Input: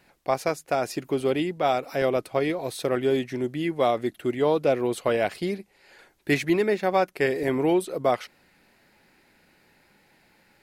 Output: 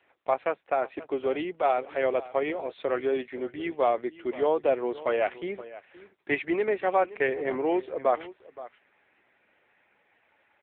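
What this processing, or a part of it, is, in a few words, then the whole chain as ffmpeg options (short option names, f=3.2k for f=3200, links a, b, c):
satellite phone: -af "highpass=400,lowpass=3.4k,aecho=1:1:522:0.141" -ar 8000 -c:a libopencore_amrnb -b:a 6700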